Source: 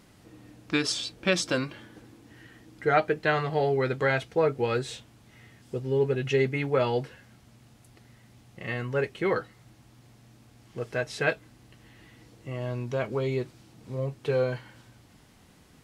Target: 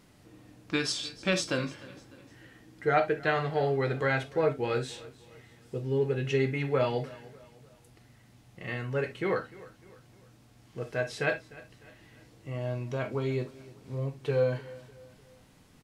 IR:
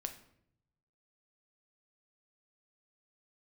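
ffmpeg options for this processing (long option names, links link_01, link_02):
-filter_complex "[0:a]aecho=1:1:301|602|903:0.1|0.044|0.0194[link_01];[1:a]atrim=start_sample=2205,atrim=end_sample=3528[link_02];[link_01][link_02]afir=irnorm=-1:irlink=0,volume=-1dB"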